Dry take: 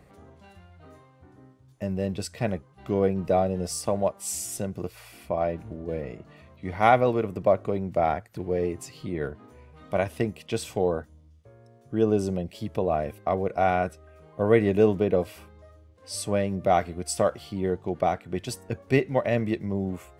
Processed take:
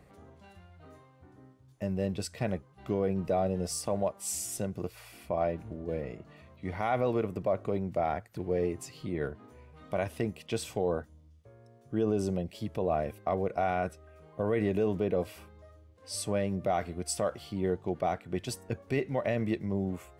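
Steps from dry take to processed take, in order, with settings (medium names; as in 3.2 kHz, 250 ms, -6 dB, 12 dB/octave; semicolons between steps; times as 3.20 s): peak limiter -15.5 dBFS, peak gain reduction 10.5 dB; trim -3 dB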